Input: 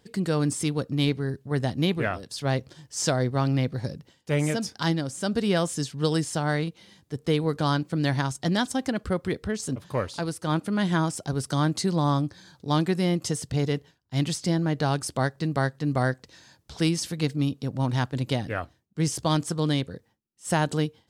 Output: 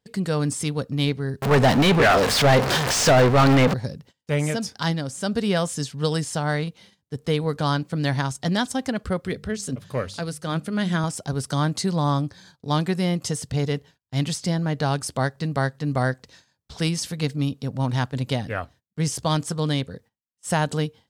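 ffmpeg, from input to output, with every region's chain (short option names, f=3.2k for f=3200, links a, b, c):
-filter_complex "[0:a]asettb=1/sr,asplit=3[a][b][c];[a]atrim=end=1.424[d];[b]atrim=start=1.42:end=3.74,asetpts=PTS-STARTPTS,afade=t=in:d=0.004:c=qsin,afade=t=out:st=2.316:d=0.004:c=qsin,aeval=exprs='val(0)+0.5*0.0266*sgn(val(0))':c=same,asplit=2[e][f];[f]highpass=f=720:p=1,volume=31dB,asoftclip=type=tanh:threshold=-9.5dB[g];[e][g]amix=inputs=2:normalize=0,lowpass=f=2.2k:p=1,volume=-6dB[h];[c]atrim=start=3.736[i];[d][h]acrossfade=d=0.004:c1=hsin:c2=qsin[j];[j][i]acrossfade=d=0.004:c1=qsin:c2=hsin,asettb=1/sr,asplit=3[k][l][m];[k]atrim=end=9.204[n];[l]atrim=start=9.2:end=11.04,asetpts=PTS-STARTPTS,afade=t=in:d=0.004:c=qsin,afade=t=out:st=1.836:d=0.004:c=qsin,highpass=47,equalizer=f=920:t=o:w=0.52:g=-7,bandreject=f=50:t=h:w=6,bandreject=f=100:t=h:w=6,bandreject=f=150:t=h:w=6,bandreject=f=200:t=h:w=6[o];[m]atrim=start=11.036[p];[n][o]acrossfade=d=0.004:c1=hsin:c2=qsin[q];[q][p]acrossfade=d=0.004:c1=qsin:c2=hsin,agate=range=-18dB:threshold=-50dB:ratio=16:detection=peak,equalizer=f=330:t=o:w=0.22:g=-9,volume=2dB"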